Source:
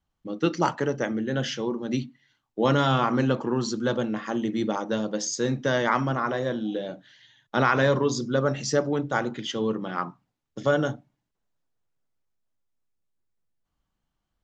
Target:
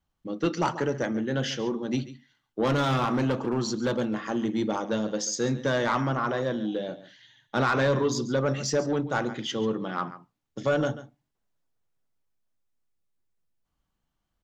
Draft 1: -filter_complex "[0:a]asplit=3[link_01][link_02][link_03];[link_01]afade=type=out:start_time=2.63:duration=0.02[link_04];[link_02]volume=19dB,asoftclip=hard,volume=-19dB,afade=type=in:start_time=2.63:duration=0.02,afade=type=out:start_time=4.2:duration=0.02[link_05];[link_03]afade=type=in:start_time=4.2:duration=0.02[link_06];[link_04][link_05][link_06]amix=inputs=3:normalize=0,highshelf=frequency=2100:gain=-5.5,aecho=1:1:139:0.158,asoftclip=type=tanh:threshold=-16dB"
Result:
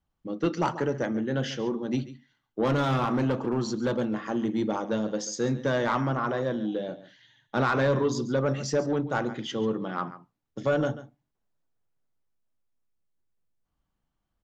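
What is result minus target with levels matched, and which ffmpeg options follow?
4,000 Hz band −3.5 dB
-filter_complex "[0:a]asplit=3[link_01][link_02][link_03];[link_01]afade=type=out:start_time=2.63:duration=0.02[link_04];[link_02]volume=19dB,asoftclip=hard,volume=-19dB,afade=type=in:start_time=2.63:duration=0.02,afade=type=out:start_time=4.2:duration=0.02[link_05];[link_03]afade=type=in:start_time=4.2:duration=0.02[link_06];[link_04][link_05][link_06]amix=inputs=3:normalize=0,aecho=1:1:139:0.158,asoftclip=type=tanh:threshold=-16dB"

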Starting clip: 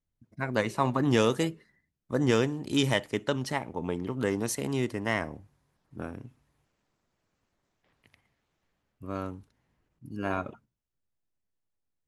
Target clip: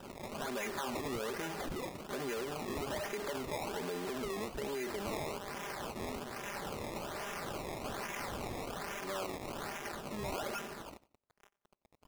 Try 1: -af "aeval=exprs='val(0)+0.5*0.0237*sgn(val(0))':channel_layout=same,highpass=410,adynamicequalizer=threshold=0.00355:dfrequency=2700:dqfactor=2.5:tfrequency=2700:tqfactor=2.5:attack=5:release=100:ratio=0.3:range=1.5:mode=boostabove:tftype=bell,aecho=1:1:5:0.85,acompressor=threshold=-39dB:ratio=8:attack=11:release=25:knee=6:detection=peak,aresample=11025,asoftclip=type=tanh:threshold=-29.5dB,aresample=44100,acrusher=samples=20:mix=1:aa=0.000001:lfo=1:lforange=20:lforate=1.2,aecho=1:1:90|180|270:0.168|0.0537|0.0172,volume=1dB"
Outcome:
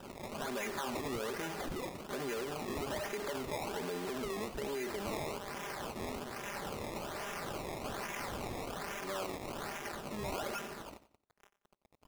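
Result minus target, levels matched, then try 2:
echo-to-direct +6.5 dB
-af "aeval=exprs='val(0)+0.5*0.0237*sgn(val(0))':channel_layout=same,highpass=410,adynamicequalizer=threshold=0.00355:dfrequency=2700:dqfactor=2.5:tfrequency=2700:tqfactor=2.5:attack=5:release=100:ratio=0.3:range=1.5:mode=boostabove:tftype=bell,aecho=1:1:5:0.85,acompressor=threshold=-39dB:ratio=8:attack=11:release=25:knee=6:detection=peak,aresample=11025,asoftclip=type=tanh:threshold=-29.5dB,aresample=44100,acrusher=samples=20:mix=1:aa=0.000001:lfo=1:lforange=20:lforate=1.2,aecho=1:1:90|180:0.0794|0.0254,volume=1dB"

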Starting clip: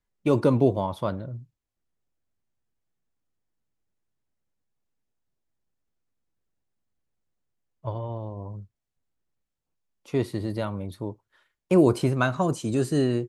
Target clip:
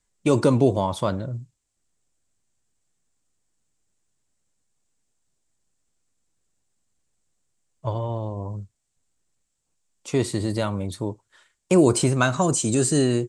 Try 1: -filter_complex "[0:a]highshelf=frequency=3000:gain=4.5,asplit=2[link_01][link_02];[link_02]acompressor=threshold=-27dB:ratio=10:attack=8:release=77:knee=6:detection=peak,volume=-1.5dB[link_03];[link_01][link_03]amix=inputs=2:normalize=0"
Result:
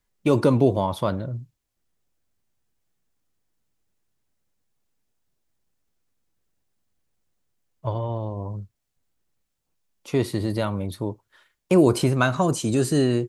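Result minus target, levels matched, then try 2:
8,000 Hz band −7.5 dB
-filter_complex "[0:a]lowpass=frequency=7900:width_type=q:width=4,highshelf=frequency=3000:gain=4.5,asplit=2[link_01][link_02];[link_02]acompressor=threshold=-27dB:ratio=10:attack=8:release=77:knee=6:detection=peak,volume=-1.5dB[link_03];[link_01][link_03]amix=inputs=2:normalize=0"

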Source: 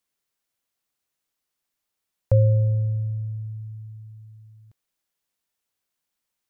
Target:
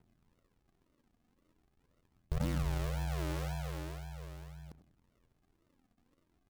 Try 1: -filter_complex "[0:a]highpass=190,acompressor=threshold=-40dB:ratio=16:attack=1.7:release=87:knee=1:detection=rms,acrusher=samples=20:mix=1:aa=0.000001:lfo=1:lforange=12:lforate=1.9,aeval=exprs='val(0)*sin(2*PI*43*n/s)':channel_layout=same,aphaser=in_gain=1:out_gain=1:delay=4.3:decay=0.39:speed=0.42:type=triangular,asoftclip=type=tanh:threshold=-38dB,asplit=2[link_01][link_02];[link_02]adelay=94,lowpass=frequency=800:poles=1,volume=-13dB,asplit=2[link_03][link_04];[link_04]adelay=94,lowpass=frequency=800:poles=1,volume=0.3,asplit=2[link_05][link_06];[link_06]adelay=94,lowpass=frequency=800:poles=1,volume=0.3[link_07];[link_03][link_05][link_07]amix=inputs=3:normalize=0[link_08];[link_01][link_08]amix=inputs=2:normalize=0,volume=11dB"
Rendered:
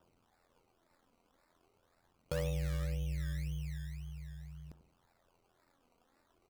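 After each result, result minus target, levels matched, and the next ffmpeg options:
sample-and-hold swept by an LFO: distortion −11 dB; soft clipping: distortion +10 dB
-filter_complex "[0:a]highpass=190,acompressor=threshold=-40dB:ratio=16:attack=1.7:release=87:knee=1:detection=rms,acrusher=samples=75:mix=1:aa=0.000001:lfo=1:lforange=45:lforate=1.9,aeval=exprs='val(0)*sin(2*PI*43*n/s)':channel_layout=same,aphaser=in_gain=1:out_gain=1:delay=4.3:decay=0.39:speed=0.42:type=triangular,asoftclip=type=tanh:threshold=-38dB,asplit=2[link_01][link_02];[link_02]adelay=94,lowpass=frequency=800:poles=1,volume=-13dB,asplit=2[link_03][link_04];[link_04]adelay=94,lowpass=frequency=800:poles=1,volume=0.3,asplit=2[link_05][link_06];[link_06]adelay=94,lowpass=frequency=800:poles=1,volume=0.3[link_07];[link_03][link_05][link_07]amix=inputs=3:normalize=0[link_08];[link_01][link_08]amix=inputs=2:normalize=0,volume=11dB"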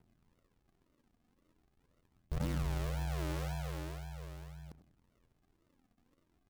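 soft clipping: distortion +12 dB
-filter_complex "[0:a]highpass=190,acompressor=threshold=-40dB:ratio=16:attack=1.7:release=87:knee=1:detection=rms,acrusher=samples=75:mix=1:aa=0.000001:lfo=1:lforange=45:lforate=1.9,aeval=exprs='val(0)*sin(2*PI*43*n/s)':channel_layout=same,aphaser=in_gain=1:out_gain=1:delay=4.3:decay=0.39:speed=0.42:type=triangular,asoftclip=type=tanh:threshold=-30dB,asplit=2[link_01][link_02];[link_02]adelay=94,lowpass=frequency=800:poles=1,volume=-13dB,asplit=2[link_03][link_04];[link_04]adelay=94,lowpass=frequency=800:poles=1,volume=0.3,asplit=2[link_05][link_06];[link_06]adelay=94,lowpass=frequency=800:poles=1,volume=0.3[link_07];[link_03][link_05][link_07]amix=inputs=3:normalize=0[link_08];[link_01][link_08]amix=inputs=2:normalize=0,volume=11dB"

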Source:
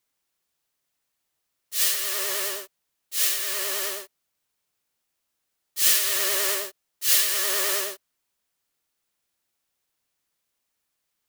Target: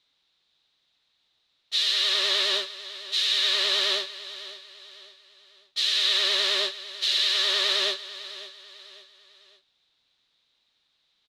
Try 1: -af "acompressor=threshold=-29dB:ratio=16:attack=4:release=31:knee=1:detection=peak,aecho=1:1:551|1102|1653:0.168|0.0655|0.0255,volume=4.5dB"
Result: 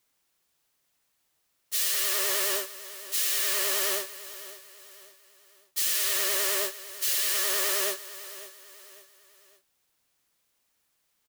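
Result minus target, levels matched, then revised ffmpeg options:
4,000 Hz band −8.0 dB
-af "acompressor=threshold=-29dB:ratio=16:attack=4:release=31:knee=1:detection=peak,lowpass=frequency=3800:width_type=q:width=6.8,aecho=1:1:551|1102|1653:0.168|0.0655|0.0255,volume=4.5dB"

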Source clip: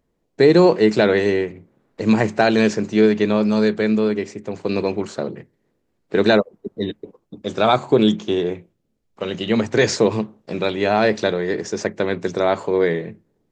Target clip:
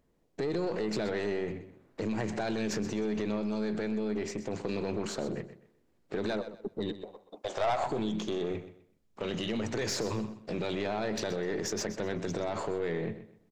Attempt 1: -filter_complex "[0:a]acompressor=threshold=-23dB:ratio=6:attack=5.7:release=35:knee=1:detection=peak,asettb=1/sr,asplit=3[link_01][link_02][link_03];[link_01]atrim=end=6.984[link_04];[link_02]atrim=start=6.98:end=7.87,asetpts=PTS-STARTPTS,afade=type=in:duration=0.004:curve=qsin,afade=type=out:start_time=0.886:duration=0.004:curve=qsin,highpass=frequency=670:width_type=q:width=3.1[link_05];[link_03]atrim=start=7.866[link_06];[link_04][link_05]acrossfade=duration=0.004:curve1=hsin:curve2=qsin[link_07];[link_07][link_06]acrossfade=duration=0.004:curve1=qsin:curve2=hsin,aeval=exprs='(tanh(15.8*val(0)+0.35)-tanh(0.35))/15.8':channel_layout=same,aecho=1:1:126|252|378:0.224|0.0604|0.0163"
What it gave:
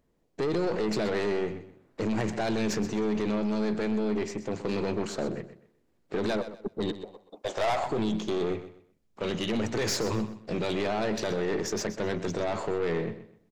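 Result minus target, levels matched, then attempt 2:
downward compressor: peak gain reduction −6.5 dB
-filter_complex "[0:a]acompressor=threshold=-30.5dB:ratio=6:attack=5.7:release=35:knee=1:detection=peak,asettb=1/sr,asplit=3[link_01][link_02][link_03];[link_01]atrim=end=6.984[link_04];[link_02]atrim=start=6.98:end=7.87,asetpts=PTS-STARTPTS,afade=type=in:duration=0.004:curve=qsin,afade=type=out:start_time=0.886:duration=0.004:curve=qsin,highpass=frequency=670:width_type=q:width=3.1[link_05];[link_03]atrim=start=7.866[link_06];[link_04][link_05]acrossfade=duration=0.004:curve1=hsin:curve2=qsin[link_07];[link_07][link_06]acrossfade=duration=0.004:curve1=qsin:curve2=hsin,aeval=exprs='(tanh(15.8*val(0)+0.35)-tanh(0.35))/15.8':channel_layout=same,aecho=1:1:126|252|378:0.224|0.0604|0.0163"

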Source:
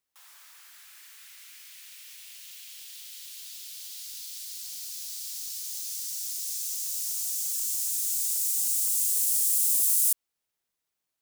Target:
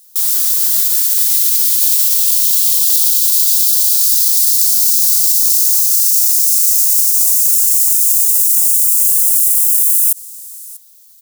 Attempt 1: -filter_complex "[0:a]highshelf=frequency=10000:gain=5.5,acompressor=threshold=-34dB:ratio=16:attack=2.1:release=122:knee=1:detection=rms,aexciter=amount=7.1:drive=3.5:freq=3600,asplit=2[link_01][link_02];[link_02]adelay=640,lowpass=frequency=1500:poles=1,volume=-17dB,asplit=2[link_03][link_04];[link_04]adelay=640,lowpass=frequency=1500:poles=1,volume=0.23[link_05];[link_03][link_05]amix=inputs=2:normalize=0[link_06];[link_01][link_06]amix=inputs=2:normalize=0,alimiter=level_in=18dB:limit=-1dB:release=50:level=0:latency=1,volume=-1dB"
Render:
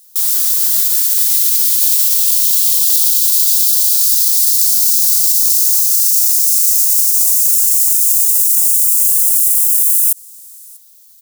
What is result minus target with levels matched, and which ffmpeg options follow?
downward compressor: peak gain reduction +5.5 dB
-filter_complex "[0:a]highshelf=frequency=10000:gain=5.5,acompressor=threshold=-28dB:ratio=16:attack=2.1:release=122:knee=1:detection=rms,aexciter=amount=7.1:drive=3.5:freq=3600,asplit=2[link_01][link_02];[link_02]adelay=640,lowpass=frequency=1500:poles=1,volume=-17dB,asplit=2[link_03][link_04];[link_04]adelay=640,lowpass=frequency=1500:poles=1,volume=0.23[link_05];[link_03][link_05]amix=inputs=2:normalize=0[link_06];[link_01][link_06]amix=inputs=2:normalize=0,alimiter=level_in=18dB:limit=-1dB:release=50:level=0:latency=1,volume=-1dB"

